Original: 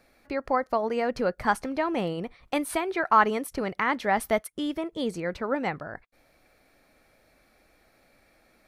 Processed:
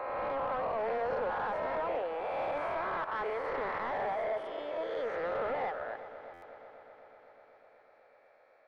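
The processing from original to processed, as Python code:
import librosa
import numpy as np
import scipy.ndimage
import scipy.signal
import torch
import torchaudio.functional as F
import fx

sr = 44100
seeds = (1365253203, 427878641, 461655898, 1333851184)

p1 = fx.spec_swells(x, sr, rise_s=1.85)
p2 = scipy.signal.sosfilt(scipy.signal.butter(6, 460.0, 'highpass', fs=sr, output='sos'), p1)
p3 = fx.peak_eq(p2, sr, hz=3100.0, db=-3.5, octaves=0.45)
p4 = fx.over_compress(p3, sr, threshold_db=-26.0, ratio=-0.5)
p5 = p3 + (p4 * librosa.db_to_amplitude(-2.0))
p6 = fx.auto_swell(p5, sr, attack_ms=118.0)
p7 = 10.0 ** (-21.0 / 20.0) * np.tanh(p6 / 10.0 ** (-21.0 / 20.0))
p8 = fx.spacing_loss(p7, sr, db_at_10k=44)
p9 = p8 + fx.echo_heads(p8, sr, ms=124, heads='second and third', feedback_pct=70, wet_db=-16.0, dry=0)
p10 = fx.buffer_glitch(p9, sr, at_s=(6.33,), block=512, repeats=7)
y = p10 * librosa.db_to_amplitude(-5.5)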